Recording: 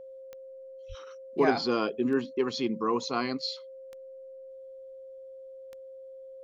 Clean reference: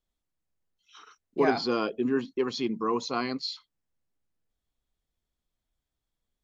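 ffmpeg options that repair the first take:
-filter_complex "[0:a]adeclick=t=4,bandreject=f=530:w=30,asplit=3[a][b][c];[a]afade=t=out:st=0.88:d=0.02[d];[b]highpass=f=140:w=0.5412,highpass=f=140:w=1.3066,afade=t=in:st=0.88:d=0.02,afade=t=out:st=1:d=0.02[e];[c]afade=t=in:st=1:d=0.02[f];[d][e][f]amix=inputs=3:normalize=0"

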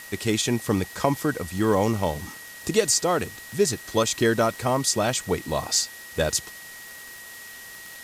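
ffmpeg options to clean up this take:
-af "adeclick=t=4,bandreject=f=1.9k:w=30,afftdn=nr=28:nf=-42"

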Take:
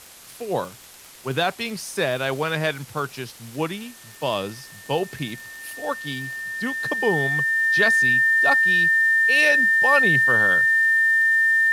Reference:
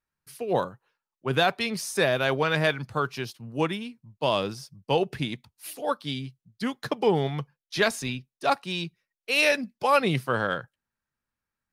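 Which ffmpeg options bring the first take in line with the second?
-af "adeclick=t=4,bandreject=f=1.8k:w=30,afftdn=nr=30:nf=-44"

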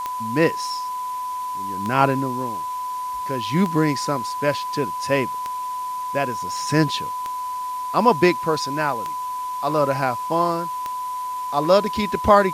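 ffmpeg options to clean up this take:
-af "adeclick=t=4,bandreject=f=1k:w=30,afwtdn=0.0063"

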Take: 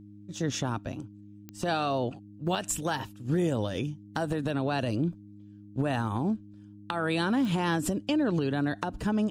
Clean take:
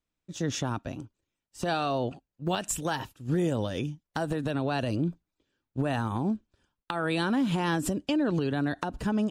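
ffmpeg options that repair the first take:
-af "adeclick=t=4,bandreject=f=102.7:t=h:w=4,bandreject=f=205.4:t=h:w=4,bandreject=f=308.1:t=h:w=4"

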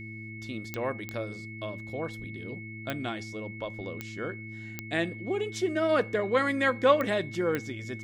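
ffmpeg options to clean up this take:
-af "adeclick=t=4,bandreject=f=109.7:t=h:w=4,bandreject=f=219.4:t=h:w=4,bandreject=f=329.1:t=h:w=4,bandreject=f=2.2k:w=30"

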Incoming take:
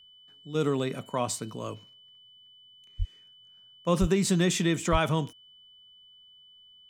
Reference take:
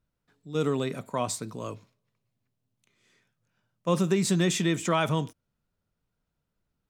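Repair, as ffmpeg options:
-filter_complex "[0:a]bandreject=f=3k:w=30,asplit=3[a][b][c];[a]afade=t=out:st=2.98:d=0.02[d];[b]highpass=f=140:w=0.5412,highpass=f=140:w=1.3066,afade=t=in:st=2.98:d=0.02,afade=t=out:st=3.1:d=0.02[e];[c]afade=t=in:st=3.1:d=0.02[f];[d][e][f]amix=inputs=3:normalize=0,asplit=3[g][h][i];[g]afade=t=out:st=4:d=0.02[j];[h]highpass=f=140:w=0.5412,highpass=f=140:w=1.3066,afade=t=in:st=4:d=0.02,afade=t=out:st=4.12:d=0.02[k];[i]afade=t=in:st=4.12:d=0.02[l];[j][k][l]amix=inputs=3:normalize=0,asplit=3[m][n][o];[m]afade=t=out:st=4.91:d=0.02[p];[n]highpass=f=140:w=0.5412,highpass=f=140:w=1.3066,afade=t=in:st=4.91:d=0.02,afade=t=out:st=5.03:d=0.02[q];[o]afade=t=in:st=5.03:d=0.02[r];[p][q][r]amix=inputs=3:normalize=0"

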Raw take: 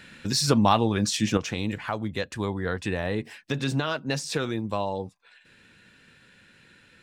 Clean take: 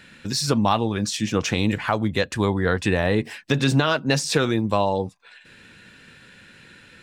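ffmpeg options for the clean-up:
-af "asetnsamples=n=441:p=0,asendcmd='1.37 volume volume 7.5dB',volume=0dB"

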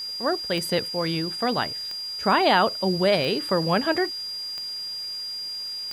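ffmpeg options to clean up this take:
-af "adeclick=t=4,bandreject=f=4.8k:w=30,afwtdn=0.004"

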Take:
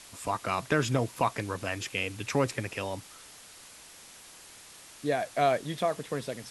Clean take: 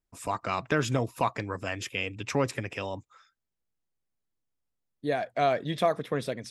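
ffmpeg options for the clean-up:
-af "afwtdn=0.004,asetnsamples=n=441:p=0,asendcmd='5.57 volume volume 3.5dB',volume=0dB"

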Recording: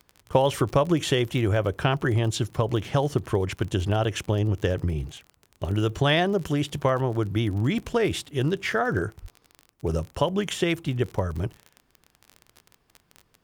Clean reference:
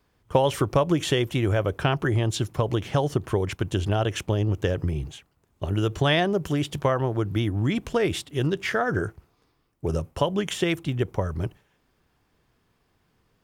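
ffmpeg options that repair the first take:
-filter_complex "[0:a]adeclick=t=4,asplit=3[a][b][c];[a]afade=t=out:st=9.21:d=0.02[d];[b]highpass=f=140:w=0.5412,highpass=f=140:w=1.3066,afade=t=in:st=9.21:d=0.02,afade=t=out:st=9.33:d=0.02[e];[c]afade=t=in:st=9.33:d=0.02[f];[d][e][f]amix=inputs=3:normalize=0"

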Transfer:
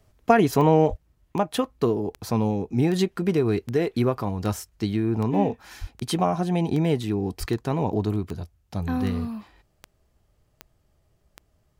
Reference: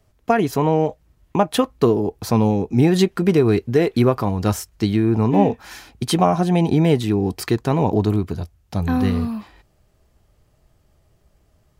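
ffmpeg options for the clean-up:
-filter_complex "[0:a]adeclick=t=4,asplit=3[a][b][c];[a]afade=t=out:st=0.89:d=0.02[d];[b]highpass=f=140:w=0.5412,highpass=f=140:w=1.3066,afade=t=in:st=0.89:d=0.02,afade=t=out:st=1.01:d=0.02[e];[c]afade=t=in:st=1.01:d=0.02[f];[d][e][f]amix=inputs=3:normalize=0,asplit=3[g][h][i];[g]afade=t=out:st=5.8:d=0.02[j];[h]highpass=f=140:w=0.5412,highpass=f=140:w=1.3066,afade=t=in:st=5.8:d=0.02,afade=t=out:st=5.92:d=0.02[k];[i]afade=t=in:st=5.92:d=0.02[l];[j][k][l]amix=inputs=3:normalize=0,asplit=3[m][n][o];[m]afade=t=out:st=7.39:d=0.02[p];[n]highpass=f=140:w=0.5412,highpass=f=140:w=1.3066,afade=t=in:st=7.39:d=0.02,afade=t=out:st=7.51:d=0.02[q];[o]afade=t=in:st=7.51:d=0.02[r];[p][q][r]amix=inputs=3:normalize=0,asetnsamples=n=441:p=0,asendcmd='0.97 volume volume 6.5dB',volume=0dB"

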